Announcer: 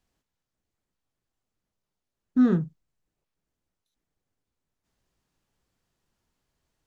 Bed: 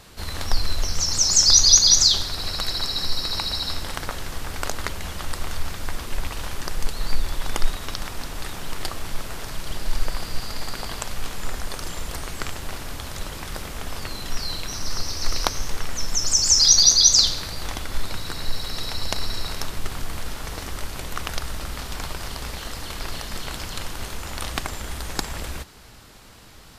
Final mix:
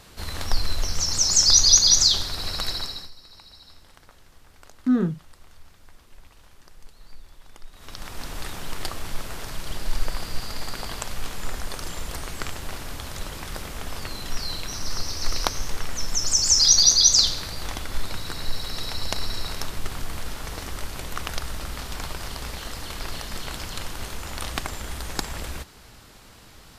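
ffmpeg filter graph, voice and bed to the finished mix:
ffmpeg -i stem1.wav -i stem2.wav -filter_complex "[0:a]adelay=2500,volume=-0.5dB[link_01];[1:a]volume=19dB,afade=type=out:start_time=2.69:duration=0.42:silence=0.0944061,afade=type=in:start_time=7.71:duration=0.59:silence=0.0944061[link_02];[link_01][link_02]amix=inputs=2:normalize=0" out.wav

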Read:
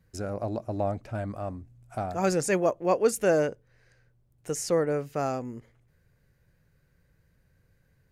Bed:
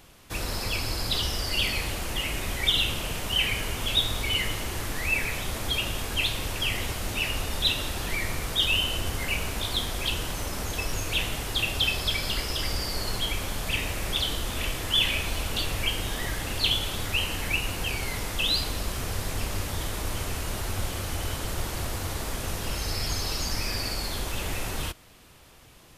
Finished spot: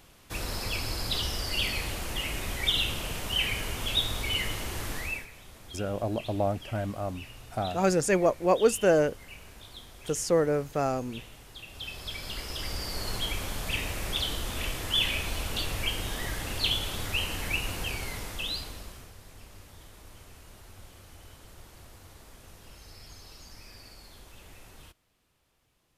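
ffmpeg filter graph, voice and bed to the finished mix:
ffmpeg -i stem1.wav -i stem2.wav -filter_complex "[0:a]adelay=5600,volume=1dB[link_01];[1:a]volume=12.5dB,afade=type=out:start_time=4.94:duration=0.33:silence=0.16788,afade=type=in:start_time=11.67:duration=1.49:silence=0.16788,afade=type=out:start_time=17.76:duration=1.37:silence=0.149624[link_02];[link_01][link_02]amix=inputs=2:normalize=0" out.wav

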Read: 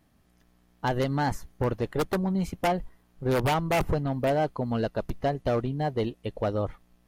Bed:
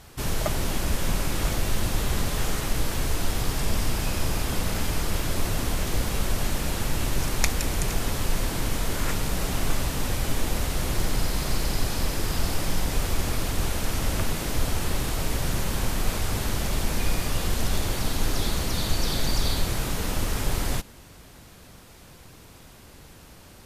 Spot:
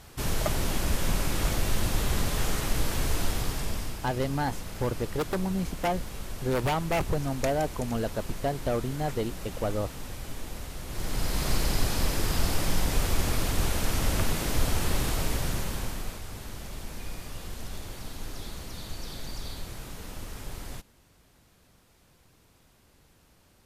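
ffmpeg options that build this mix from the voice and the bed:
ffmpeg -i stem1.wav -i stem2.wav -filter_complex "[0:a]adelay=3200,volume=-2.5dB[link_01];[1:a]volume=10dB,afade=type=out:start_time=3.2:duration=0.81:silence=0.298538,afade=type=in:start_time=10.87:duration=0.62:silence=0.266073,afade=type=out:start_time=15.09:duration=1.12:silence=0.237137[link_02];[link_01][link_02]amix=inputs=2:normalize=0" out.wav

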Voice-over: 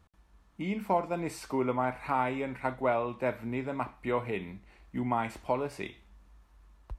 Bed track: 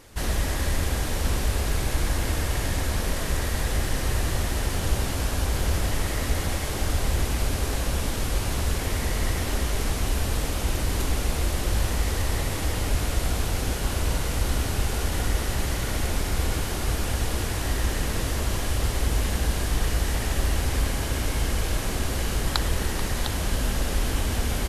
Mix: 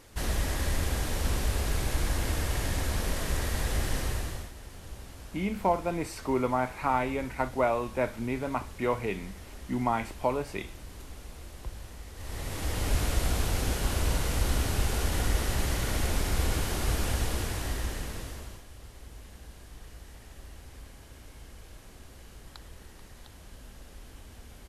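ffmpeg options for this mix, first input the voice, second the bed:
ffmpeg -i stem1.wav -i stem2.wav -filter_complex "[0:a]adelay=4750,volume=2dB[link_01];[1:a]volume=13dB,afade=type=out:start_time=3.96:duration=0.56:silence=0.16788,afade=type=in:start_time=12.15:duration=0.8:silence=0.141254,afade=type=out:start_time=17.07:duration=1.57:silence=0.0944061[link_02];[link_01][link_02]amix=inputs=2:normalize=0" out.wav

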